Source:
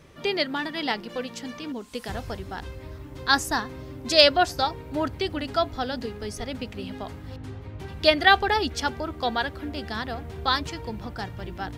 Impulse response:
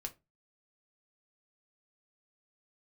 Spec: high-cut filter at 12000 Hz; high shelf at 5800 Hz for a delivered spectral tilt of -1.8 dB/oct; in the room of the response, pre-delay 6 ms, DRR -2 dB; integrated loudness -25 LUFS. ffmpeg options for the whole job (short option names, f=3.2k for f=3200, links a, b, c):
-filter_complex "[0:a]lowpass=12k,highshelf=f=5.8k:g=-6.5,asplit=2[a][b];[1:a]atrim=start_sample=2205,adelay=6[c];[b][c]afir=irnorm=-1:irlink=0,volume=4.5dB[d];[a][d]amix=inputs=2:normalize=0,volume=-2dB"